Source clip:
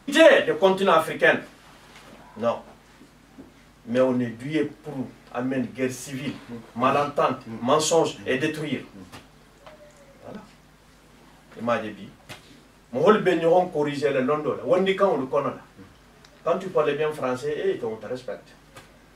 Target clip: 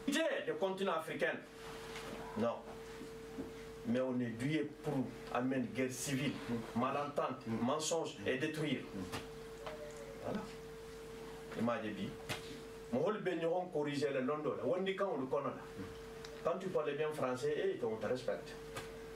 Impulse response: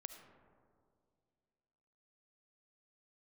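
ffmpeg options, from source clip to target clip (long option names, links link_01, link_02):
-af "aeval=exprs='val(0)+0.00398*sin(2*PI*450*n/s)':channel_layout=same,acompressor=threshold=-32dB:ratio=16,volume=-1dB"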